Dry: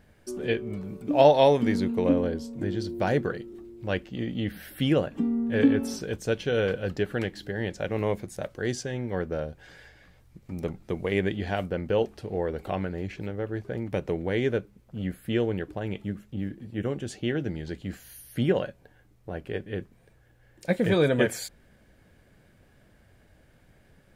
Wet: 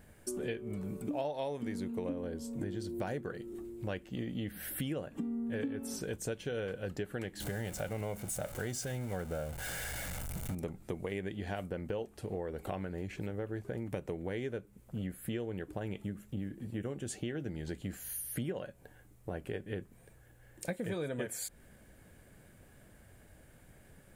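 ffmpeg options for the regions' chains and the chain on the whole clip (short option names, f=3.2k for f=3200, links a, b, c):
-filter_complex "[0:a]asettb=1/sr,asplit=3[a][b][c];[a]atrim=end=7.404[d];[b]atrim=start=7.4:end=10.55,asetpts=PTS-STARTPTS,afade=t=in:d=0.004:c=qsin,afade=t=out:st=3.146:d=0.004:c=qsin,aeval=exprs='val(0)+0.5*0.0141*sgn(val(0))':c=same,aecho=1:1:1.4:0.39,atrim=end_sample=138915[e];[c]atrim=start=10.546[f];[d][e]acrossfade=d=0.004:c1=hsin:c2=qsin[g];[g][f]acrossfade=d=0.004:c1=qsin:c2=hsin,highshelf=f=6.5k:t=q:w=1.5:g=7,acompressor=threshold=-35dB:ratio=6"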